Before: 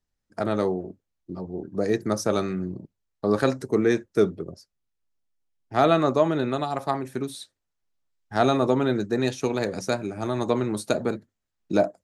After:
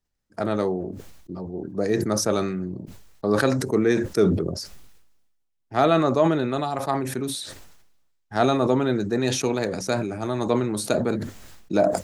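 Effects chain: sustainer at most 46 dB/s

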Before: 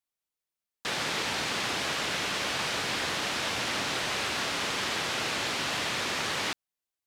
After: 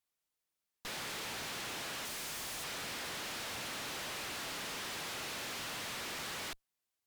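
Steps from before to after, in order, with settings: 2.05–2.64 wrapped overs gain 28.5 dB; tube stage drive 47 dB, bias 0.75; gain +6 dB

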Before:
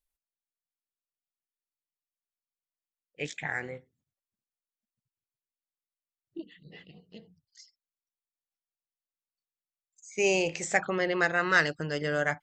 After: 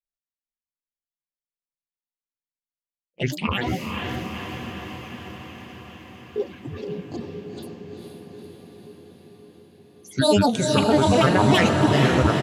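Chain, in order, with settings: gate -55 dBFS, range -21 dB; bell 140 Hz +14 dB 2.7 oct; notches 50/100/150/200/250/300/350/400 Hz; comb 5.8 ms, depth 31%; limiter -14 dBFS, peak gain reduction 7 dB; grains, spray 16 ms, pitch spread up and down by 12 st; diffused feedback echo 0.467 s, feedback 70%, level -4 dB; gain +5.5 dB

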